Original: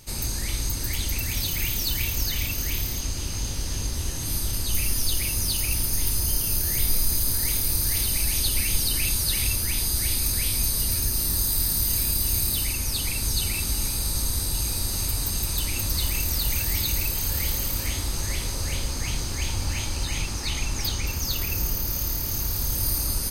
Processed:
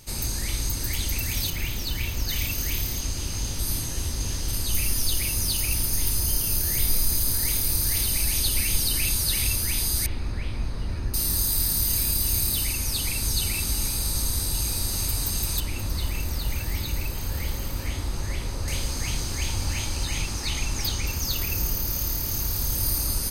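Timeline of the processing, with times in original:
0:01.50–0:02.29: high-shelf EQ 5,400 Hz −10 dB
0:03.59–0:04.48: reverse
0:10.06–0:11.14: low-pass filter 1,800 Hz
0:15.60–0:18.68: high-shelf EQ 3,500 Hz −11.5 dB

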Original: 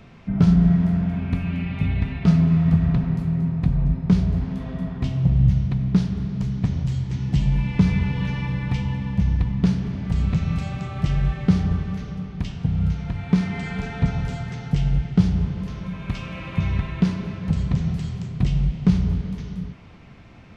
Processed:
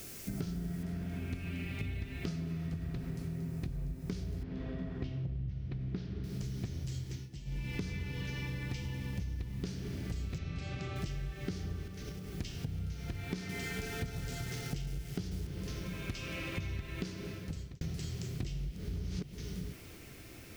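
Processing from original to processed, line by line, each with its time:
0:00.83: noise floor change −54 dB −65 dB
0:04.43–0:06.24: high-frequency loss of the air 250 metres
0:06.99–0:07.75: duck −19.5 dB, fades 0.30 s
0:10.38–0:10.96: low-pass filter 4,400 Hz
0:11.87–0:12.35: downward compressor 10 to 1, threshold −31 dBFS
0:13.35–0:15.47: feedback echo at a low word length 141 ms, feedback 35%, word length 6 bits, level −12.5 dB
0:17.01–0:17.81: fade out
0:18.76–0:19.33: reverse
whole clip: drawn EQ curve 110 Hz 0 dB, 200 Hz −6 dB, 340 Hz +8 dB, 960 Hz −6 dB, 1,500 Hz +2 dB, 3,700 Hz +6 dB, 5,200 Hz +12 dB; downward compressor 10 to 1, threshold −29 dBFS; level −5.5 dB

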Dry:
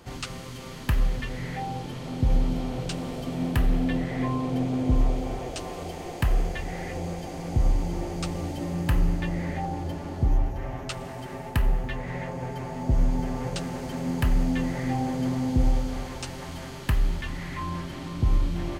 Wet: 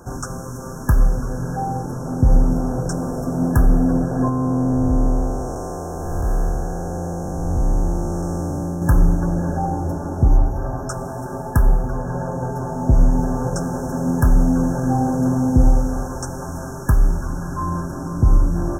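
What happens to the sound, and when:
0:04.29–0:08.82: spectrum smeared in time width 364 ms
whole clip: brick-wall band-stop 1,700–5,300 Hz; level +8.5 dB

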